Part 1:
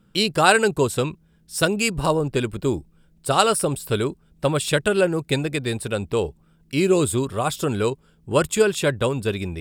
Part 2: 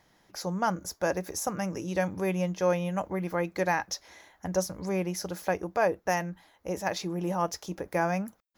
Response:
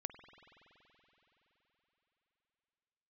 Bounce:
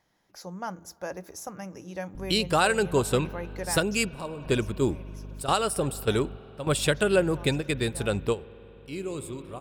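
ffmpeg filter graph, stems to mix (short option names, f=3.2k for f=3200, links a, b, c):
-filter_complex "[0:a]aeval=exprs='val(0)+0.0158*(sin(2*PI*50*n/s)+sin(2*PI*2*50*n/s)/2+sin(2*PI*3*50*n/s)/3+sin(2*PI*4*50*n/s)/4+sin(2*PI*5*50*n/s)/5)':c=same,adelay=2150,volume=-4dB,asplit=2[a][b];[b]volume=-9dB[c];[1:a]bandreject=f=82.77:t=h:w=4,bandreject=f=165.54:t=h:w=4,bandreject=f=248.31:t=h:w=4,bandreject=f=331.08:t=h:w=4,bandreject=f=413.85:t=h:w=4,volume=-8.5dB,afade=t=out:st=3.63:d=0.64:silence=0.251189,asplit=3[d][e][f];[e]volume=-12.5dB[g];[f]apad=whole_len=518459[h];[a][h]sidechaingate=range=-33dB:threshold=-60dB:ratio=16:detection=peak[i];[2:a]atrim=start_sample=2205[j];[c][g]amix=inputs=2:normalize=0[k];[k][j]afir=irnorm=-1:irlink=0[l];[i][d][l]amix=inputs=3:normalize=0,alimiter=limit=-10.5dB:level=0:latency=1:release=480"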